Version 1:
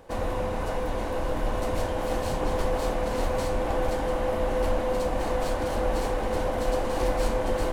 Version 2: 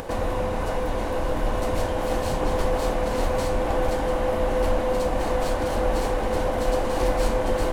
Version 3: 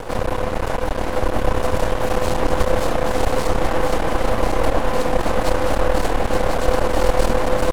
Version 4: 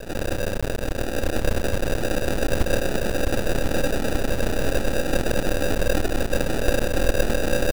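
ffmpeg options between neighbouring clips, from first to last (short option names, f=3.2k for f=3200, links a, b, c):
-af "acompressor=mode=upward:threshold=-27dB:ratio=2.5,volume=3dB"
-af "aeval=exprs='max(val(0),0)':c=same,aecho=1:1:1045:0.562,volume=7.5dB"
-af "acrusher=samples=41:mix=1:aa=0.000001,volume=-4dB"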